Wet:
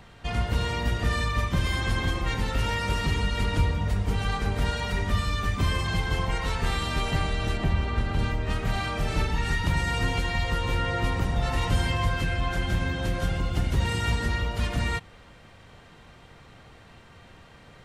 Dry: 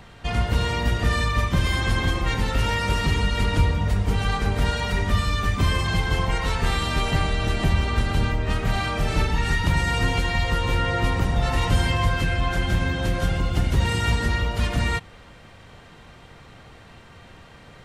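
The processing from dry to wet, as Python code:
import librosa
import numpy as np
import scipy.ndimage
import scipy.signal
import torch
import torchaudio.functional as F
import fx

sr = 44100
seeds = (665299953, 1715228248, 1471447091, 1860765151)

y = fx.high_shelf(x, sr, hz=4400.0, db=-10.5, at=(7.57, 8.19))
y = y * librosa.db_to_amplitude(-4.0)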